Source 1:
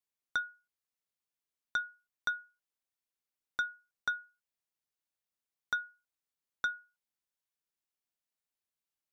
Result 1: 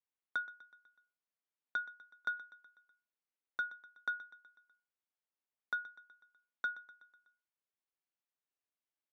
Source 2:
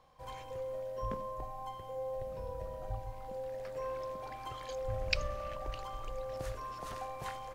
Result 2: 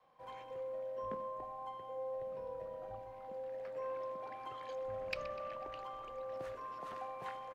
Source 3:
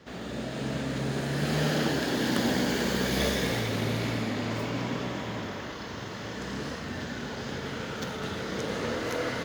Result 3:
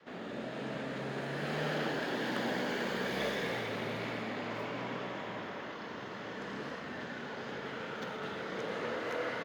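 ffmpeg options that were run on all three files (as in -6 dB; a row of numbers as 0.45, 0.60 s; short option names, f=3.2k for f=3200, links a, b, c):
-filter_complex "[0:a]asplit=2[a][b];[b]aecho=0:1:124|248|372|496|620:0.126|0.0718|0.0409|0.0233|0.0133[c];[a][c]amix=inputs=2:normalize=0,adynamicequalizer=threshold=0.00794:dfrequency=260:dqfactor=1.3:tfrequency=260:tqfactor=1.3:attack=5:release=100:ratio=0.375:range=3:mode=cutabove:tftype=bell,asoftclip=type=tanh:threshold=-18.5dB,acrossover=split=160 3300:gain=0.1 1 0.224[d][e][f];[d][e][f]amix=inputs=3:normalize=0,volume=-3dB"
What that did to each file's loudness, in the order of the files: -4.0, -3.5, -7.0 LU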